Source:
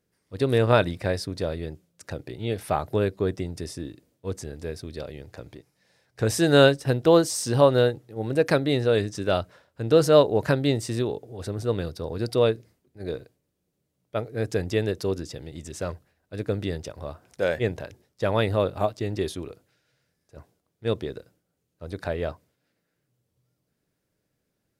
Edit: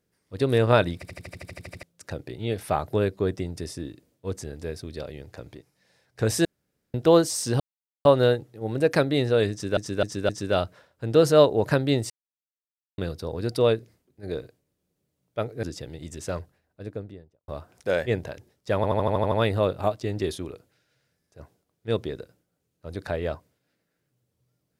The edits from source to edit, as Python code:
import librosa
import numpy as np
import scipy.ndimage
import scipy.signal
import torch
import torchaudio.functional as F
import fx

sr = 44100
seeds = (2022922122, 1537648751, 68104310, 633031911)

y = fx.studio_fade_out(x, sr, start_s=15.87, length_s=1.14)
y = fx.edit(y, sr, fx.stutter_over(start_s=0.95, slice_s=0.08, count=11),
    fx.room_tone_fill(start_s=6.45, length_s=0.49),
    fx.insert_silence(at_s=7.6, length_s=0.45),
    fx.repeat(start_s=9.06, length_s=0.26, count=4),
    fx.silence(start_s=10.87, length_s=0.88),
    fx.cut(start_s=14.4, length_s=0.76),
    fx.stutter(start_s=18.29, slice_s=0.08, count=8), tone=tone)